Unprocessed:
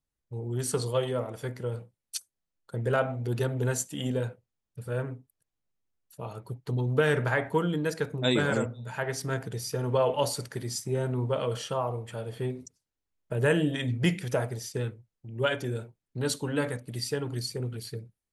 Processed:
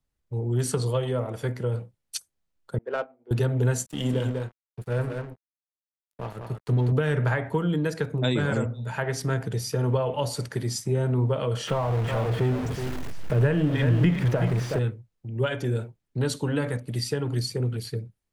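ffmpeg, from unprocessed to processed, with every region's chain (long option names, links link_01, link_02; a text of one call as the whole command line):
ffmpeg -i in.wav -filter_complex "[0:a]asettb=1/sr,asplit=3[link_01][link_02][link_03];[link_01]atrim=end=2.784[link_04];[link_02]atrim=start=2.78:end=3.31,asetpts=PTS-STARTPTS,afade=type=in:duration=0.004:curve=qsin,afade=type=out:start_time=0.526:duration=0.004:curve=qsin,agate=range=-33dB:threshold=-20dB:ratio=3:release=100:detection=peak,highpass=frequency=280:width=0.5412,highpass=frequency=280:width=1.3066,adynamicsmooth=sensitivity=7:basefreq=2200[link_05];[link_03]atrim=start=3.306[link_06];[link_04][link_05]acrossfade=duration=0.004:curve1=hsin:curve2=qsin[link_07];[link_07][link_06]acrossfade=duration=0.004:curve1=qsin:curve2=hsin,asettb=1/sr,asplit=3[link_08][link_09][link_10];[link_08]atrim=end=3.864[link_11];[link_09]atrim=start=3.86:end=6.92,asetpts=PTS-STARTPTS,afade=type=in:duration=0.004:curve=qsin,afade=type=out:start_time=3.056:duration=0.004:curve=qsin,aecho=1:1:196:0.562,atrim=end_sample=134946,aeval=exprs='sgn(val(0))*max(abs(val(0))-0.00596,0)':channel_layout=same[link_12];[link_10]atrim=start=6.916[link_13];[link_11][link_12]acrossfade=duration=0.004:curve1=hsin:curve2=qsin[link_14];[link_14][link_13]acrossfade=duration=0.004:curve1=qsin:curve2=hsin,asettb=1/sr,asplit=3[link_15][link_16][link_17];[link_15]atrim=end=11.674[link_18];[link_16]atrim=start=11.67:end=14.79,asetpts=PTS-STARTPTS,afade=type=in:duration=0.004:curve=qsin,afade=type=out:start_time=3.116:duration=0.004:curve=qsin,aeval=exprs='val(0)+0.5*0.0299*sgn(val(0))':channel_layout=same,acrossover=split=3100[link_19][link_20];[link_20]acompressor=threshold=-49dB:ratio=4:attack=1:release=60[link_21];[link_19][link_21]amix=inputs=2:normalize=0,aecho=1:1:372:0.335,atrim=end_sample=137592[link_22];[link_17]atrim=start=14.786[link_23];[link_18][link_22]acrossfade=duration=0.004:curve1=hsin:curve2=qsin[link_24];[link_24][link_23]acrossfade=duration=0.004:curve1=qsin:curve2=hsin,highshelf=frequency=6300:gain=-5.5,acrossover=split=160[link_25][link_26];[link_26]acompressor=threshold=-30dB:ratio=4[link_27];[link_25][link_27]amix=inputs=2:normalize=0,lowshelf=frequency=140:gain=4,volume=5dB" out.wav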